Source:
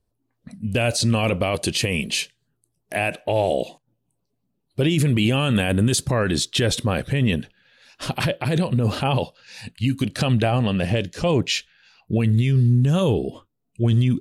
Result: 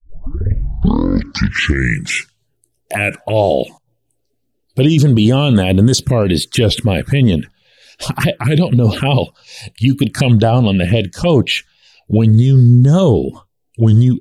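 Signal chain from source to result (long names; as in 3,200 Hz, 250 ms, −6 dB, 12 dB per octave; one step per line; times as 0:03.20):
turntable start at the beginning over 2.55 s
automatic gain control gain up to 12.5 dB
phaser swept by the level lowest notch 170 Hz, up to 2,600 Hz, full sweep at −5.5 dBFS
wow of a warped record 33 1/3 rpm, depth 100 cents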